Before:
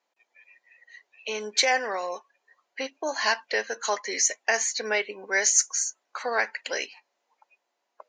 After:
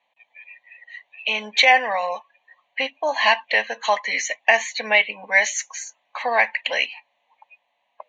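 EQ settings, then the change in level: low-pass 4.4 kHz 24 dB/octave; treble shelf 3.4 kHz +10.5 dB; static phaser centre 1.4 kHz, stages 6; +9.0 dB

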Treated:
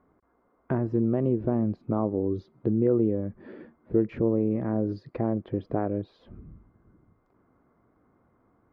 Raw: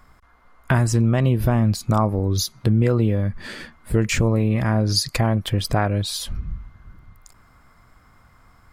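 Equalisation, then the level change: band-pass filter 360 Hz, Q 1.9; distance through air 320 m; +2.0 dB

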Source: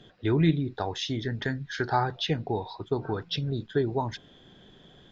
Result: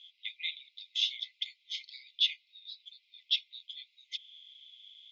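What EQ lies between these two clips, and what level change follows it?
brick-wall FIR high-pass 2 kHz; distance through air 90 m; peaking EQ 3.4 kHz +8.5 dB 0.41 oct; 0.0 dB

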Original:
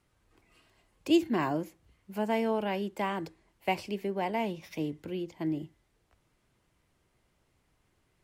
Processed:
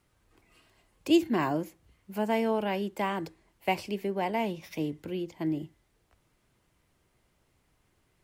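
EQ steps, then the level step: treble shelf 12 kHz +5 dB; +1.5 dB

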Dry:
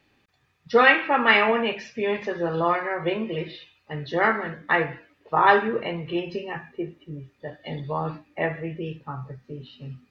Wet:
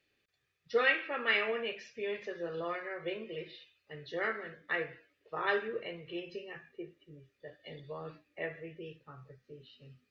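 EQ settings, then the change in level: resonant low shelf 340 Hz -7.5 dB, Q 1.5; peaking EQ 880 Hz -15 dB 0.86 oct; -9.0 dB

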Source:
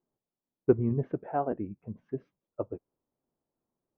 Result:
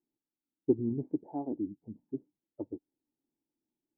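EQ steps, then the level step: cascade formant filter u; +4.5 dB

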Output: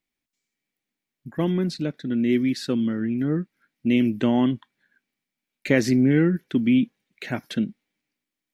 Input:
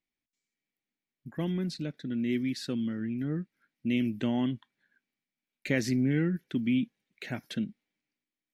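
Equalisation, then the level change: dynamic bell 410 Hz, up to +5 dB, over -39 dBFS, Q 0.85; dynamic bell 1.1 kHz, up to +5 dB, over -51 dBFS, Q 1.5; +5.5 dB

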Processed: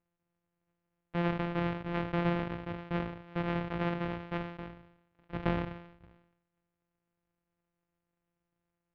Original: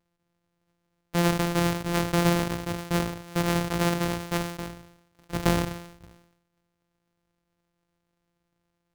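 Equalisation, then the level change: low-pass 2.9 kHz 24 dB/octave; -7.5 dB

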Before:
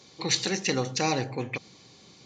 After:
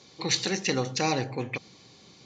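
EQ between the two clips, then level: low-pass 7.9 kHz 12 dB/octave; 0.0 dB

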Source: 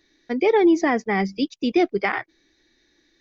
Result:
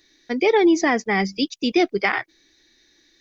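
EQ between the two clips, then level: treble shelf 2.7 kHz +10 dB; 0.0 dB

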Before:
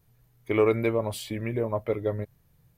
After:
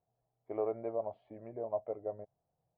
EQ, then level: band-pass filter 700 Hz, Q 5.8; distance through air 340 m; tilt EQ -2.5 dB/octave; 0.0 dB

